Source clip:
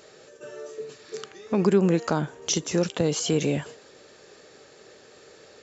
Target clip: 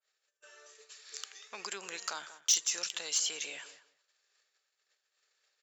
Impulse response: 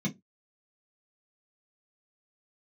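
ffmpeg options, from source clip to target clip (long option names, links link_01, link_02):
-filter_complex "[0:a]highpass=1500,agate=range=-24dB:threshold=-53dB:ratio=16:detection=peak,asettb=1/sr,asplit=3[link_01][link_02][link_03];[link_01]atrim=end=0.754[link_04];[link_02]atrim=start=0.75:end=3.18,asetpts=PTS-STARTPTS,afade=type=in:duration=0.004:curve=qsin,afade=type=out:start_time=2.426:duration=0.004:curve=qsin,highshelf=frequency=4200:gain=8[link_05];[link_03]atrim=start=3.176[link_06];[link_04][link_05]acrossfade=duration=0.004:curve1=hsin:curve2=qsin[link_07];[link_07][link_06]acrossfade=duration=0.004:curve1=qsin:curve2=hsin,asplit=2[link_08][link_09];[link_09]adelay=189,lowpass=frequency=2100:poles=1,volume=-14dB,asplit=2[link_10][link_11];[link_11]adelay=189,lowpass=frequency=2100:poles=1,volume=0.17[link_12];[link_08][link_10][link_12]amix=inputs=3:normalize=0,asoftclip=type=tanh:threshold=-15.5dB,adynamicequalizer=threshold=0.00562:dfrequency=2800:dqfactor=0.7:tfrequency=2800:tqfactor=0.7:attack=5:release=100:ratio=0.375:range=1.5:mode=boostabove:tftype=highshelf,volume=-5dB"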